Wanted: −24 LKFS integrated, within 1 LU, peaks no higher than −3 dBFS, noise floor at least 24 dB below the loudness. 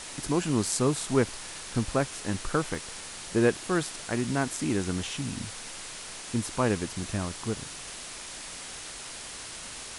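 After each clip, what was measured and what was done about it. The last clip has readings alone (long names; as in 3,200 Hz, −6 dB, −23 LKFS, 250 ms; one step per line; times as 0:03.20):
number of dropouts 2; longest dropout 1.4 ms; background noise floor −41 dBFS; target noise floor −55 dBFS; integrated loudness −30.5 LKFS; sample peak −9.5 dBFS; target loudness −24.0 LKFS
→ repair the gap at 0:00.67/0:02.75, 1.4 ms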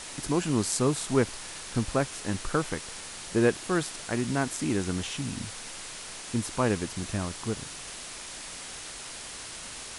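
number of dropouts 0; background noise floor −41 dBFS; target noise floor −55 dBFS
→ noise reduction from a noise print 14 dB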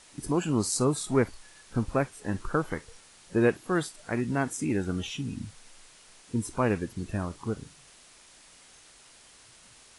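background noise floor −55 dBFS; integrated loudness −30.0 LKFS; sample peak −10.0 dBFS; target loudness −24.0 LKFS
→ level +6 dB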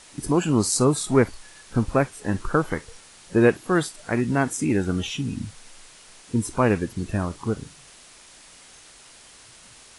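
integrated loudness −24.0 LKFS; sample peak −4.0 dBFS; background noise floor −49 dBFS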